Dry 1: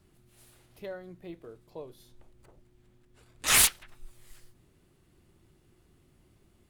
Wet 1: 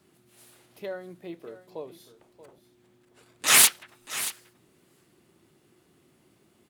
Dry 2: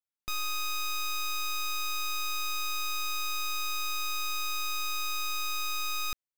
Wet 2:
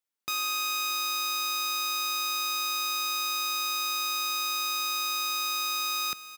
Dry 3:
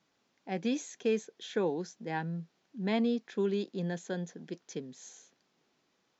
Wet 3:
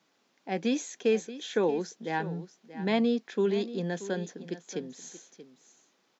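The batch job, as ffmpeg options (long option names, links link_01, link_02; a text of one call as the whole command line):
ffmpeg -i in.wav -af "highpass=190,aecho=1:1:631:0.188,volume=4.5dB" out.wav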